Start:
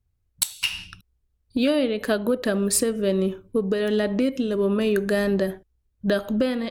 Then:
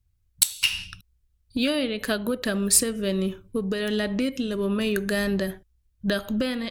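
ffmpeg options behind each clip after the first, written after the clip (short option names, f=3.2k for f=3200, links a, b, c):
-af "equalizer=f=480:w=0.41:g=-9.5,volume=4dB"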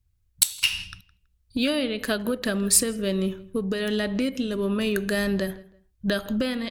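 -filter_complex "[0:a]asplit=2[a][b];[b]adelay=163,lowpass=f=3k:p=1,volume=-20dB,asplit=2[c][d];[d]adelay=163,lowpass=f=3k:p=1,volume=0.26[e];[a][c][e]amix=inputs=3:normalize=0"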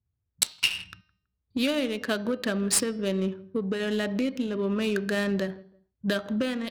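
-af "highpass=120,adynamicsmooth=sensitivity=5:basefreq=1.4k,bandreject=f=309.5:t=h:w=4,bandreject=f=619:t=h:w=4,bandreject=f=928.5:t=h:w=4,bandreject=f=1.238k:t=h:w=4,bandreject=f=1.5475k:t=h:w=4,bandreject=f=1.857k:t=h:w=4,bandreject=f=2.1665k:t=h:w=4,bandreject=f=2.476k:t=h:w=4,bandreject=f=2.7855k:t=h:w=4,bandreject=f=3.095k:t=h:w=4,bandreject=f=3.4045k:t=h:w=4,bandreject=f=3.714k:t=h:w=4,bandreject=f=4.0235k:t=h:w=4,bandreject=f=4.333k:t=h:w=4,bandreject=f=4.6425k:t=h:w=4,bandreject=f=4.952k:t=h:w=4,bandreject=f=5.2615k:t=h:w=4,bandreject=f=5.571k:t=h:w=4,bandreject=f=5.8805k:t=h:w=4,volume=-1.5dB"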